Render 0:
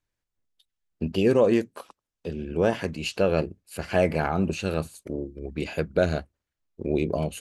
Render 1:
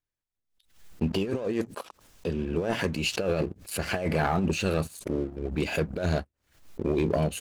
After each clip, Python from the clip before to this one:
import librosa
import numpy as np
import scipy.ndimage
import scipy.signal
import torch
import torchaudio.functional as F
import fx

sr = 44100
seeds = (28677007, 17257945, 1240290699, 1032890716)

y = fx.over_compress(x, sr, threshold_db=-24.0, ratio=-0.5)
y = fx.leveller(y, sr, passes=2)
y = fx.pre_swell(y, sr, db_per_s=120.0)
y = F.gain(torch.from_numpy(y), -7.0).numpy()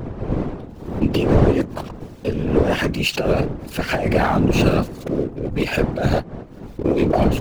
y = scipy.ndimage.median_filter(x, 5, mode='constant')
y = fx.dmg_wind(y, sr, seeds[0], corner_hz=300.0, level_db=-32.0)
y = fx.whisperise(y, sr, seeds[1])
y = F.gain(torch.from_numpy(y), 8.0).numpy()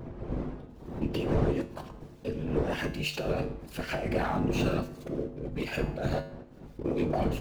y = fx.comb_fb(x, sr, f0_hz=50.0, decay_s=0.54, harmonics='odd', damping=0.0, mix_pct=70)
y = F.gain(torch.from_numpy(y), -4.0).numpy()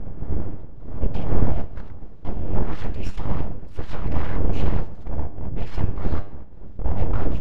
y = np.abs(x)
y = scipy.signal.sosfilt(scipy.signal.butter(2, 11000.0, 'lowpass', fs=sr, output='sos'), y)
y = fx.riaa(y, sr, side='playback')
y = F.gain(torch.from_numpy(y), -1.0).numpy()